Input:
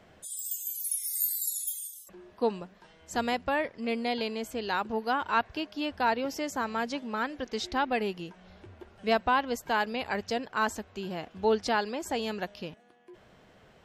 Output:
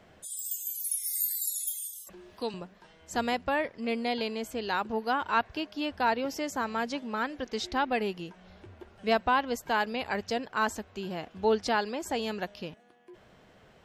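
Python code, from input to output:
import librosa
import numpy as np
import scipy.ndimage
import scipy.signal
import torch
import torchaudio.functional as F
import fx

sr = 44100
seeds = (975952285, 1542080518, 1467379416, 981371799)

y = fx.band_squash(x, sr, depth_pct=40, at=(1.06, 2.54))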